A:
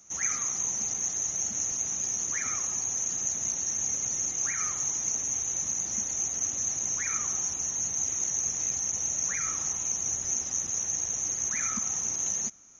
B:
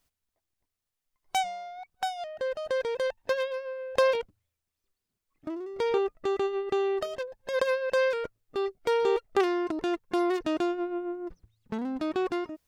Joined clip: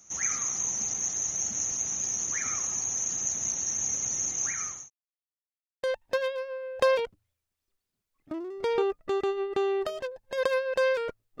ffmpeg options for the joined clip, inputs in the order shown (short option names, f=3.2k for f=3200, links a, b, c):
-filter_complex "[0:a]apad=whole_dur=11.4,atrim=end=11.4,asplit=2[a][b];[a]atrim=end=4.9,asetpts=PTS-STARTPTS,afade=t=out:st=4.32:d=0.58:c=qsin[c];[b]atrim=start=4.9:end=5.83,asetpts=PTS-STARTPTS,volume=0[d];[1:a]atrim=start=2.99:end=8.56,asetpts=PTS-STARTPTS,afade=t=in:d=0.004:c=hsin[e];[c][d][e]concat=n=3:v=0:a=1"